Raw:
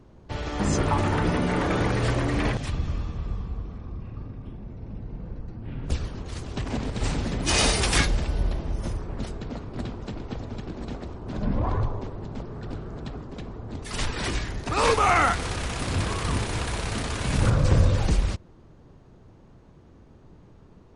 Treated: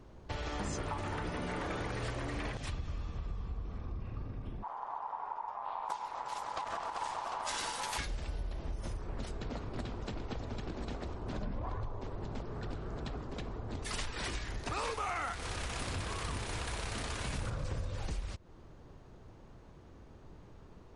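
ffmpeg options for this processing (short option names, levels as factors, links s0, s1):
-filter_complex "[0:a]asplit=3[s0][s1][s2];[s0]afade=t=out:st=4.62:d=0.02[s3];[s1]aeval=exprs='val(0)*sin(2*PI*920*n/s)':c=same,afade=t=in:st=4.62:d=0.02,afade=t=out:st=7.97:d=0.02[s4];[s2]afade=t=in:st=7.97:d=0.02[s5];[s3][s4][s5]amix=inputs=3:normalize=0,equalizer=f=180:w=0.55:g=-5.5,acompressor=threshold=0.0178:ratio=6"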